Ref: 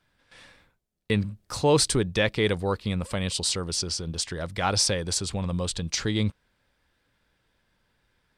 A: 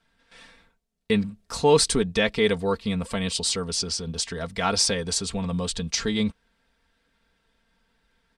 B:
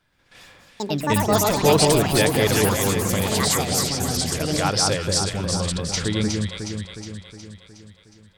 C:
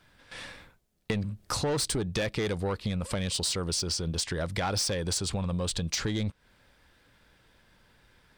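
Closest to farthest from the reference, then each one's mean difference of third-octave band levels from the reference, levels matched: A, C, B; 2.0 dB, 4.5 dB, 11.0 dB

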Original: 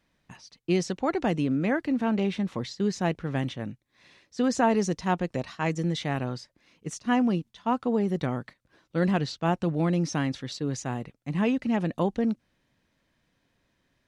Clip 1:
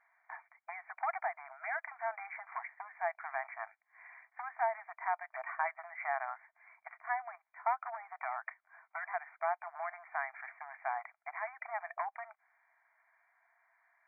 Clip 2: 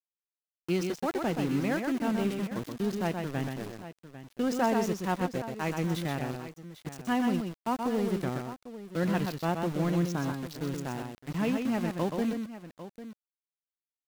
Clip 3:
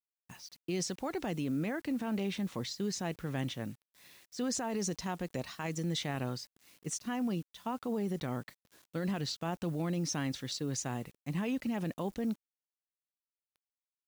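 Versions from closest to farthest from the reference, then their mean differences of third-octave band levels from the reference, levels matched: 3, 2, 1; 6.0 dB, 9.5 dB, 18.5 dB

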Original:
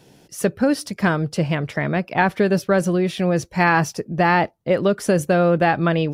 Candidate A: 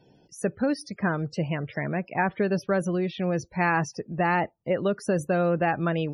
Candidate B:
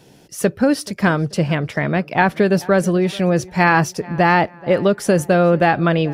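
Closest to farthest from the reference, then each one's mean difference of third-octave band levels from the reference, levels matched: B, A; 1.0 dB, 4.0 dB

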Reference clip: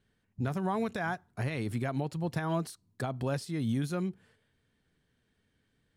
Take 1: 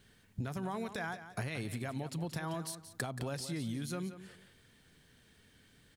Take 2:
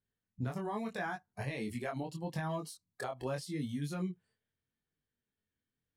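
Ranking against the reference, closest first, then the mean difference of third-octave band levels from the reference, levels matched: 2, 1; 4.0 dB, 7.0 dB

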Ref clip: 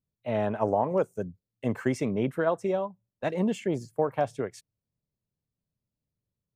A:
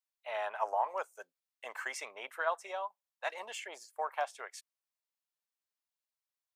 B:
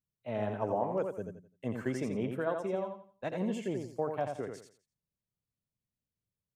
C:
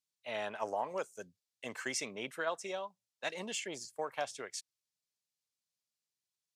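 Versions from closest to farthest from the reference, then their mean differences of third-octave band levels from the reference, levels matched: B, C, A; 5.0 dB, 8.5 dB, 12.0 dB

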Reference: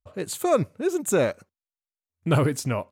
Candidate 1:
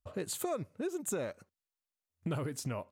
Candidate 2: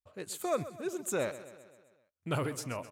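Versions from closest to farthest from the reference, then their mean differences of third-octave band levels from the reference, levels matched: 1, 2; 4.0 dB, 5.5 dB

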